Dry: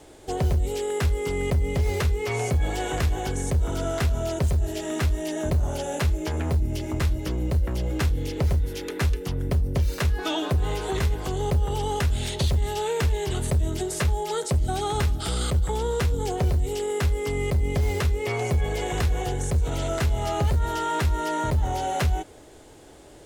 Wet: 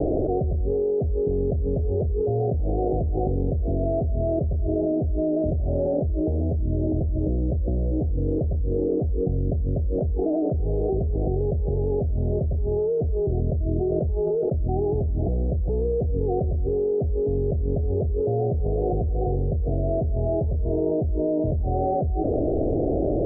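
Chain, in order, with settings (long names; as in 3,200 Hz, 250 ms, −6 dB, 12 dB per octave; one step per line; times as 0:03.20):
Butterworth low-pass 720 Hz 96 dB per octave
envelope flattener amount 100%
level −5 dB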